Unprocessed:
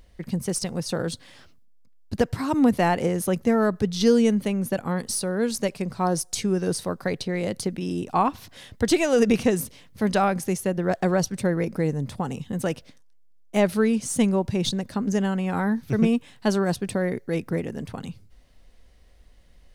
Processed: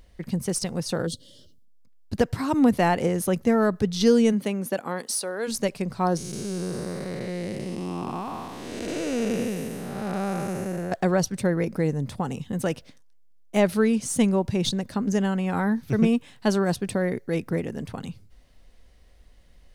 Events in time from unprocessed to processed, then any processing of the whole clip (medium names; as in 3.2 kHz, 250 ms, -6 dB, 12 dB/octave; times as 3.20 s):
1.06–1.81 s: time-frequency box 640–2800 Hz -21 dB
4.32–5.47 s: high-pass 160 Hz -> 540 Hz
6.17–10.92 s: spectral blur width 488 ms